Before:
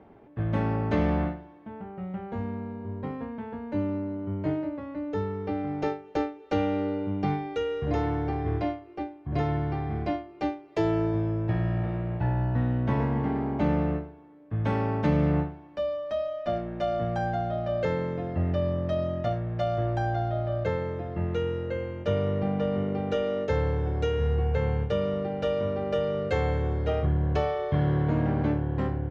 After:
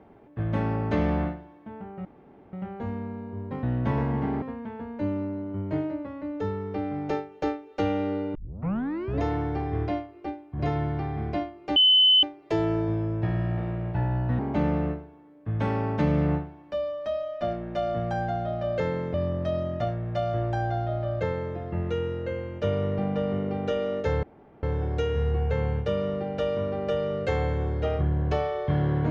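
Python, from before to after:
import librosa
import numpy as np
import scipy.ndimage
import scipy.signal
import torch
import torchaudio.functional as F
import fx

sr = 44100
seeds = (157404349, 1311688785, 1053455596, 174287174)

y = fx.edit(x, sr, fx.insert_room_tone(at_s=2.05, length_s=0.48),
    fx.tape_start(start_s=7.08, length_s=0.87),
    fx.insert_tone(at_s=10.49, length_s=0.47, hz=3030.0, db=-14.5),
    fx.move(start_s=12.65, length_s=0.79, to_s=3.15),
    fx.cut(start_s=18.19, length_s=0.39),
    fx.insert_room_tone(at_s=23.67, length_s=0.4), tone=tone)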